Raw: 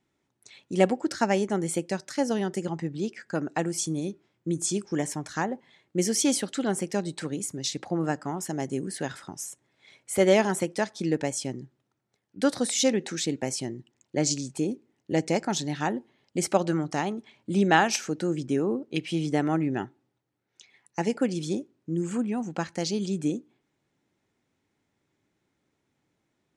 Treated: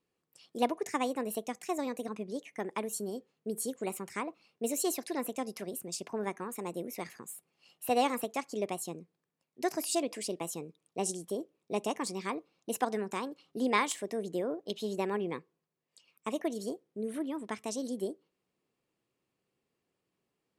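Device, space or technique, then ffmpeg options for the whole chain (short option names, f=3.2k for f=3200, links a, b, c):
nightcore: -af "asetrate=56889,aresample=44100,volume=-7.5dB"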